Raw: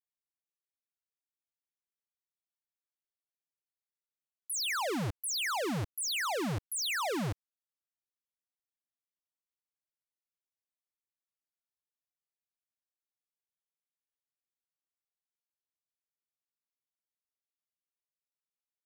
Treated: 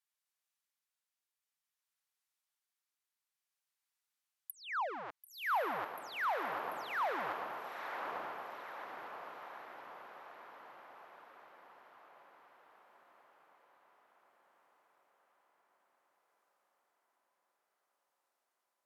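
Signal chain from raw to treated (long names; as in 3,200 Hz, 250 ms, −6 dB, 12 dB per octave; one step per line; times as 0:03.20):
Chebyshev high-pass filter 980 Hz, order 2
treble cut that deepens with the level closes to 1,100 Hz, closed at −36 dBFS
shaped tremolo triangle 0.56 Hz, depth 50%
on a send: feedback delay with all-pass diffusion 1,002 ms, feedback 58%, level −5 dB
on the sum: level +8 dB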